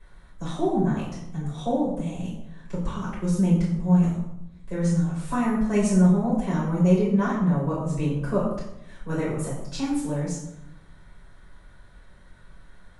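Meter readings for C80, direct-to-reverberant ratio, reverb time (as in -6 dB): 6.0 dB, -9.5 dB, 0.80 s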